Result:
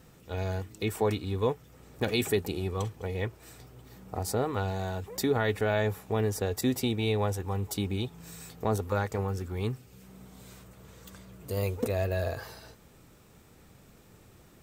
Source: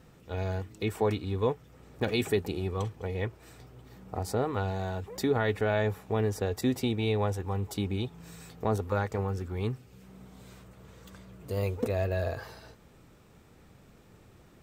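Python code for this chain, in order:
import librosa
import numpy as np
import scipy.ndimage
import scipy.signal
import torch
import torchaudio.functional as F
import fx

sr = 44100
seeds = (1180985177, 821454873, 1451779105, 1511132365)

y = fx.high_shelf(x, sr, hz=5900.0, db=9.0)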